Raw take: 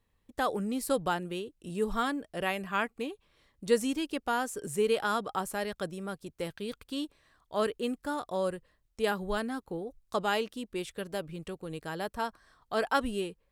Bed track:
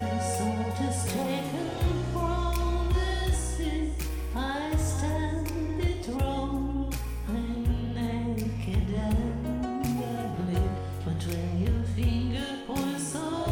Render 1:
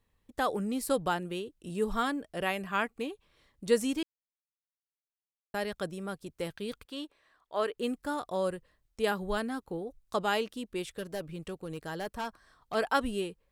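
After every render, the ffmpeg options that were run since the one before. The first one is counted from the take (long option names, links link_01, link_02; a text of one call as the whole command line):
ffmpeg -i in.wav -filter_complex "[0:a]asettb=1/sr,asplit=3[link_01][link_02][link_03];[link_01]atrim=end=6.854[link_04];[link_02]atrim=start=6.85:end=7.78,asetpts=PTS-STARTPTS,afade=type=in:duration=0.004:curve=qsin,afade=type=out:start_time=0.926:duration=0.004:curve=qsin,bass=frequency=250:gain=-15,treble=frequency=4000:gain=-7[link_05];[link_03]atrim=start=7.776[link_06];[link_04][link_05]acrossfade=duration=0.004:curve1=hsin:curve2=qsin[link_07];[link_07][link_06]acrossfade=duration=0.004:curve1=qsin:curve2=hsin,asettb=1/sr,asplit=3[link_08][link_09][link_10];[link_08]atrim=end=10.954[link_11];[link_09]atrim=start=10.95:end=12.75,asetpts=PTS-STARTPTS,afade=type=in:duration=0.004:curve=qsin,afade=type=out:start_time=1.796:duration=0.004:curve=qsin,asoftclip=type=hard:threshold=-30.5dB[link_12];[link_10]atrim=start=12.746[link_13];[link_11][link_12]acrossfade=duration=0.004:curve1=hsin:curve2=qsin[link_14];[link_14][link_13]acrossfade=duration=0.004:curve1=qsin:curve2=hsin,asplit=3[link_15][link_16][link_17];[link_15]atrim=end=4.03,asetpts=PTS-STARTPTS,afade=type=out:start_time=4.026:duration=0.004:curve=hsin[link_18];[link_16]atrim=start=4.03:end=5.54,asetpts=PTS-STARTPTS,volume=0[link_19];[link_17]atrim=start=5.54,asetpts=PTS-STARTPTS,afade=type=in:duration=0.004:curve=hsin[link_20];[link_18][link_19][link_20]concat=n=3:v=0:a=1" out.wav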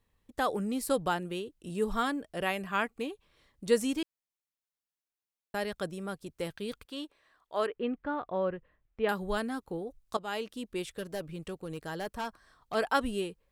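ffmpeg -i in.wav -filter_complex "[0:a]asettb=1/sr,asplit=3[link_01][link_02][link_03];[link_01]atrim=end=7.664[link_04];[link_02]atrim=start=7.66:end=9.09,asetpts=PTS-STARTPTS,afade=type=in:duration=0.004:curve=qsin,afade=type=out:start_time=1.426:duration=0.004:curve=qsin,lowpass=frequency=2700:width=0.5412,lowpass=frequency=2700:width=1.3066[link_05];[link_03]atrim=start=9.086[link_06];[link_04][link_05]acrossfade=duration=0.004:curve1=hsin:curve2=qsin[link_07];[link_07][link_06]acrossfade=duration=0.004:curve1=qsin:curve2=hsin,asplit=2[link_08][link_09];[link_08]atrim=end=10.17,asetpts=PTS-STARTPTS,afade=type=out:start_time=10.166:duration=0.004:curve=hsin:silence=0.211349[link_10];[link_09]atrim=start=10.17,asetpts=PTS-STARTPTS,afade=type=in:duration=0.47:silence=0.211349[link_11];[link_10][link_11]concat=n=2:v=0:a=1" out.wav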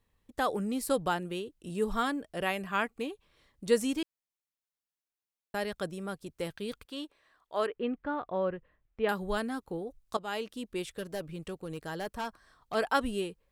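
ffmpeg -i in.wav -af anull out.wav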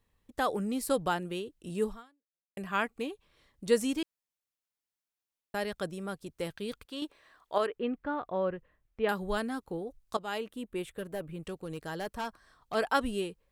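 ffmpeg -i in.wav -filter_complex "[0:a]asettb=1/sr,asplit=3[link_01][link_02][link_03];[link_01]atrim=end=10.384[link_04];[link_02]atrim=start=10.38:end=11.44,asetpts=PTS-STARTPTS,afade=type=in:duration=0.004:curve=qsin,afade=type=out:start_time=1.056:duration=0.004:curve=qsin,equalizer=frequency=5200:width=1.3:gain=-12[link_05];[link_03]atrim=start=11.436[link_06];[link_04][link_05]acrossfade=duration=0.004:curve1=hsin:curve2=qsin[link_07];[link_07][link_06]acrossfade=duration=0.004:curve1=qsin:curve2=hsin,asplit=4[link_08][link_09][link_10][link_11];[link_08]atrim=end=2.57,asetpts=PTS-STARTPTS,afade=type=out:start_time=1.86:duration=0.71:curve=exp[link_12];[link_09]atrim=start=2.57:end=7.022,asetpts=PTS-STARTPTS,afade=type=in:duration=0.004:curve=hsin[link_13];[link_10]atrim=start=7.018:end=7.582,asetpts=PTS-STARTPTS,volume=6dB[link_14];[link_11]atrim=start=7.578[link_15];[link_12][link_13]concat=n=2:v=0:a=1[link_16];[link_16][link_14]acrossfade=duration=0.004:curve1=hsin:curve2=hsin[link_17];[link_17][link_15]acrossfade=duration=0.004:curve1=hsin:curve2=hsin" out.wav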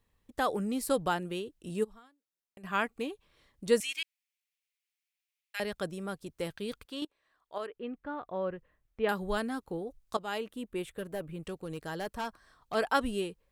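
ffmpeg -i in.wav -filter_complex "[0:a]asplit=3[link_01][link_02][link_03];[link_01]afade=type=out:start_time=1.83:duration=0.02[link_04];[link_02]acompressor=threshold=-49dB:ratio=8:attack=3.2:release=140:knee=1:detection=peak,afade=type=in:start_time=1.83:duration=0.02,afade=type=out:start_time=2.63:duration=0.02[link_05];[link_03]afade=type=in:start_time=2.63:duration=0.02[link_06];[link_04][link_05][link_06]amix=inputs=3:normalize=0,asettb=1/sr,asplit=3[link_07][link_08][link_09];[link_07]atrim=end=3.804[link_10];[link_08]atrim=start=3.8:end=5.6,asetpts=PTS-STARTPTS,afade=type=in:duration=0.004:curve=qsin,afade=type=out:start_time=1.796:duration=0.004:curve=qsin,highpass=frequency=2300:width_type=q:width=2.9[link_11];[link_09]atrim=start=5.596[link_12];[link_10][link_11]acrossfade=duration=0.004:curve1=hsin:curve2=qsin[link_13];[link_13][link_12]acrossfade=duration=0.004:curve1=qsin:curve2=hsin,asplit=2[link_14][link_15];[link_14]atrim=end=7.05,asetpts=PTS-STARTPTS,afade=type=out:start_time=7.046:duration=0.004:curve=hsin:silence=0.125893[link_16];[link_15]atrim=start=7.05,asetpts=PTS-STARTPTS,afade=type=in:duration=2.07:silence=0.125893[link_17];[link_16][link_17]concat=n=2:v=0:a=1" out.wav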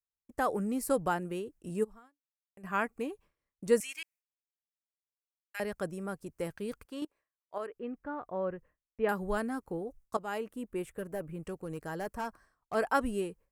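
ffmpeg -i in.wav -af "agate=range=-33dB:threshold=-52dB:ratio=3:detection=peak,equalizer=frequency=3600:width_type=o:width=0.72:gain=-13.5" out.wav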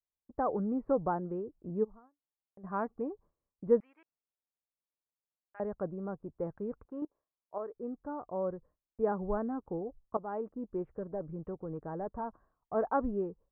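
ffmpeg -i in.wav -af "lowpass=frequency=1100:width=0.5412,lowpass=frequency=1100:width=1.3066" out.wav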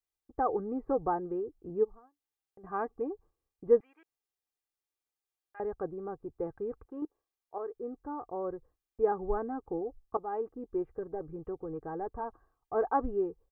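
ffmpeg -i in.wav -af "aecho=1:1:2.5:0.62" out.wav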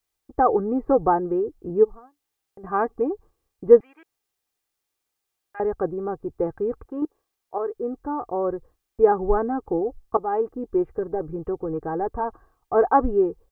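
ffmpeg -i in.wav -af "volume=11dB" out.wav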